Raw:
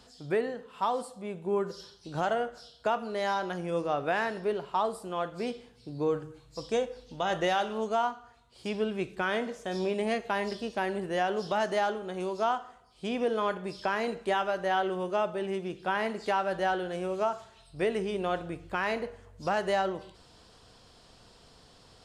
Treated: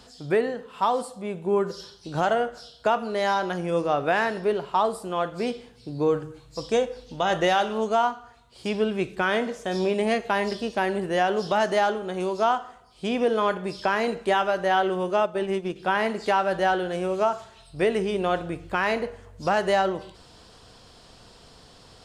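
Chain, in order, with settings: 15.20–15.76 s: transient shaper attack +3 dB, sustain -7 dB; trim +6 dB

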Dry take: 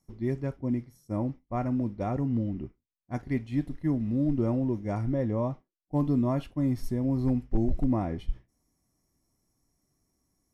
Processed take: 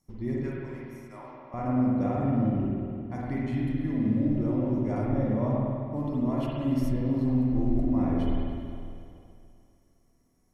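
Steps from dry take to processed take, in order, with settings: 0.43–1.54 s: high-pass 1.3 kHz 12 dB/octave; peak limiter -24.5 dBFS, peak gain reduction 8.5 dB; spring tank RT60 2.5 s, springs 47/51 ms, chirp 50 ms, DRR -5 dB

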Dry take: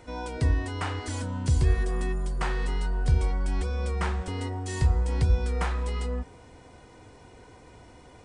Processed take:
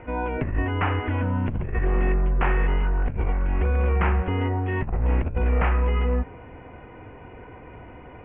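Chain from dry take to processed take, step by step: one-sided wavefolder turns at -23.5 dBFS; steep low-pass 2.8 kHz 72 dB/octave; compressor with a negative ratio -27 dBFS, ratio -0.5; trim +6.5 dB

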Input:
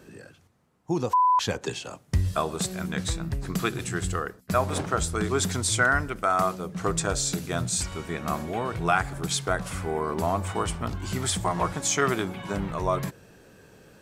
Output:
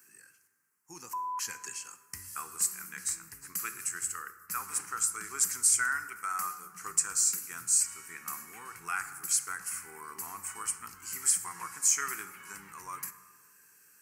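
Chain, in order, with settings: differentiator; static phaser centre 1.5 kHz, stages 4; plate-style reverb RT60 1.6 s, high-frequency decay 0.4×, DRR 10.5 dB; trim +5.5 dB

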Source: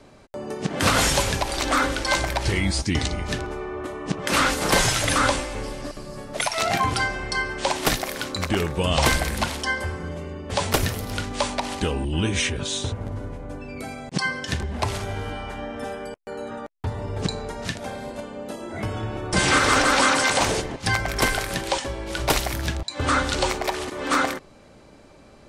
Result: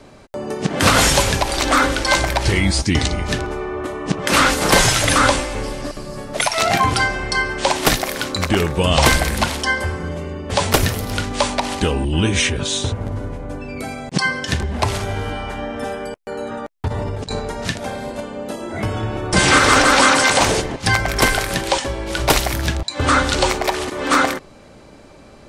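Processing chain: 16.88–17.40 s: compressor with a negative ratio -30 dBFS, ratio -0.5; trim +6 dB

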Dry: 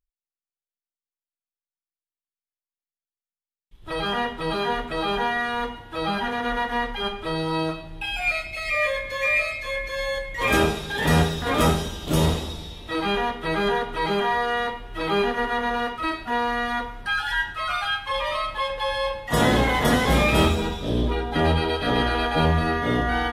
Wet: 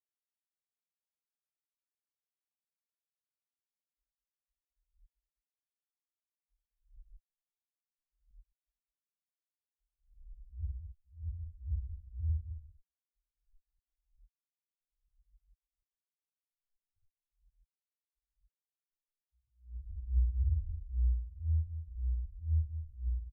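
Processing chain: inverse Chebyshev low-pass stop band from 510 Hz, stop band 80 dB; small samples zeroed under -34 dBFS; loudest bins only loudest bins 1; on a send: loudspeakers at several distances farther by 22 m -9 dB, 71 m -9 dB; on the sum: attacks held to a fixed rise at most 160 dB/s

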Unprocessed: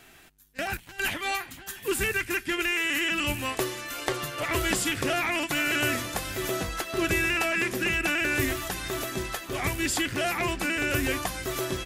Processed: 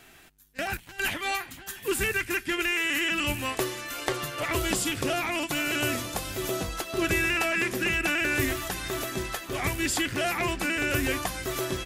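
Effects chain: 4.52–7.02 s: peaking EQ 1.8 kHz -5.5 dB 0.76 oct

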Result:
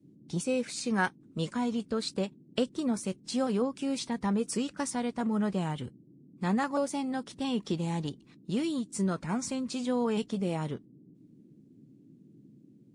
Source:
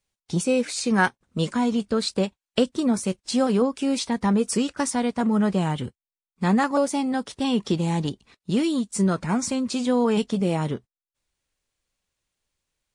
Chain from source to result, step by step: band noise 120–320 Hz -48 dBFS; trim -8 dB

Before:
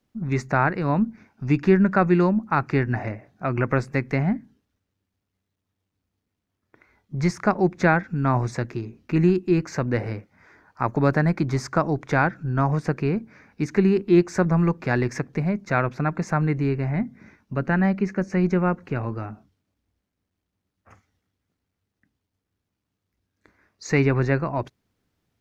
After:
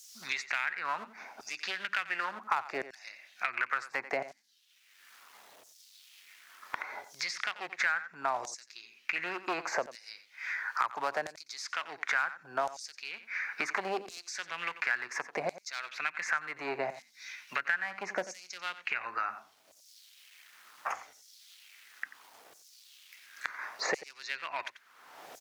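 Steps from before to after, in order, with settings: 15.44–16.06 s: high-pass 42 Hz 24 dB/octave; in parallel at +1.5 dB: compression, threshold -28 dBFS, peak gain reduction 15.5 dB; on the sum: one-sided clip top -18 dBFS, bottom -4.5 dBFS; LFO high-pass saw down 0.71 Hz 580–6800 Hz; on a send: delay 89 ms -16 dB; on the sum: three bands compressed up and down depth 100%; trim -8 dB

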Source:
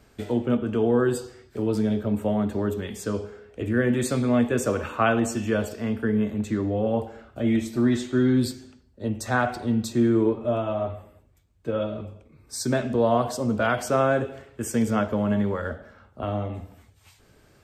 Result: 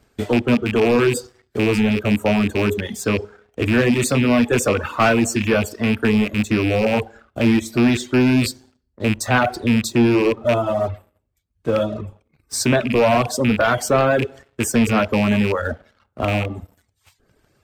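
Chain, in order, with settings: rattle on loud lows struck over -27 dBFS, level -20 dBFS; waveshaping leveller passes 2; reverb removal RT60 0.68 s; trim +1.5 dB

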